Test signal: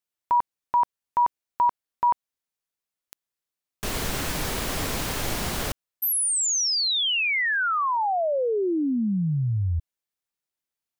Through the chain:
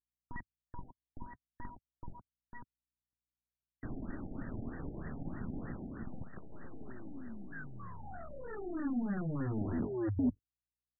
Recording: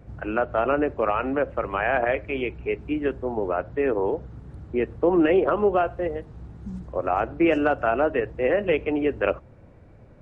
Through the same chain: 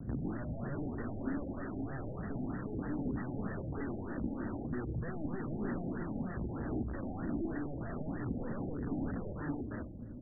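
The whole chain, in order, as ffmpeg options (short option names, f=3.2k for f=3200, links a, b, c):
-filter_complex "[0:a]bandreject=f=50:t=h:w=6,bandreject=f=100:t=h:w=6,asplit=2[a][b];[b]aecho=0:1:501:0.316[c];[a][c]amix=inputs=2:normalize=0,acompressor=threshold=-28dB:ratio=3:attack=29:release=175:knee=1:detection=peak,highshelf=f=2k:g=4,aeval=exprs='clip(val(0),-1,0.0316)':c=same,alimiter=limit=-21dB:level=0:latency=1:release=98,aeval=exprs='(mod(42.2*val(0)+1,2)-1)/42.2':c=same,equalizer=f=125:t=o:w=1:g=4,equalizer=f=250:t=o:w=1:g=11,equalizer=f=500:t=o:w=1:g=-5,equalizer=f=1k:t=o:w=1:g=-9,aeval=exprs='val(0)+0.000562*(sin(2*PI*60*n/s)+sin(2*PI*2*60*n/s)/2+sin(2*PI*3*60*n/s)/3+sin(2*PI*4*60*n/s)/4+sin(2*PI*5*60*n/s)/5)':c=same,agate=range=-37dB:threshold=-58dB:ratio=16:release=27:detection=peak,flanger=delay=0.1:depth=3.6:regen=-58:speed=0.35:shape=triangular,afftfilt=real='re*lt(b*sr/1024,830*pow(2000/830,0.5+0.5*sin(2*PI*3.2*pts/sr)))':imag='im*lt(b*sr/1024,830*pow(2000/830,0.5+0.5*sin(2*PI*3.2*pts/sr)))':win_size=1024:overlap=0.75,volume=3.5dB"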